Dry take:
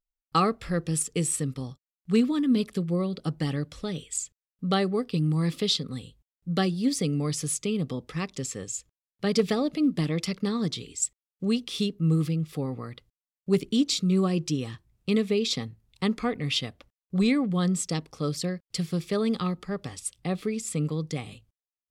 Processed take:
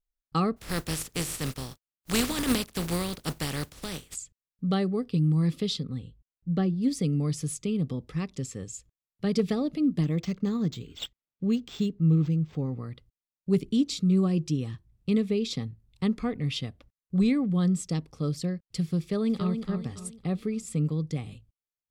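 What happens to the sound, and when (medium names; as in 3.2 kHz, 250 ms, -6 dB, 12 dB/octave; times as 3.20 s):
0.56–4.14 s: spectral contrast reduction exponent 0.35
5.84–6.81 s: low-pass 2.9 kHz -> 1.2 kHz 6 dB/octave
10.03–12.77 s: decimation joined by straight lines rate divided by 4×
19.01–19.56 s: echo throw 280 ms, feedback 40%, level -7.5 dB
whole clip: bass shelf 290 Hz +11.5 dB; trim -7 dB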